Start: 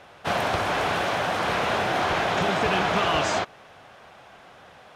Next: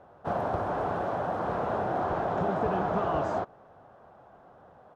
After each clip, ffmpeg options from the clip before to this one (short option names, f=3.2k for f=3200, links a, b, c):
-af "firequalizer=gain_entry='entry(690,0);entry(1400,-7);entry(2200,-21)':delay=0.05:min_phase=1,volume=-3dB"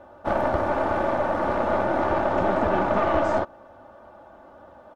-af "aecho=1:1:3.4:0.76,aeval=exprs='(tanh(10*val(0)+0.6)-tanh(0.6))/10':c=same,volume=8dB"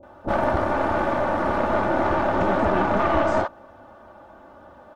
-filter_complex "[0:a]acrossover=split=590[a][b];[b]adelay=30[c];[a][c]amix=inputs=2:normalize=0,volume=3dB"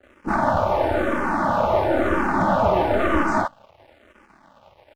-filter_complex "[0:a]aeval=exprs='sgn(val(0))*max(abs(val(0))-0.00447,0)':c=same,asplit=2[a][b];[b]afreqshift=-1[c];[a][c]amix=inputs=2:normalize=1,volume=5dB"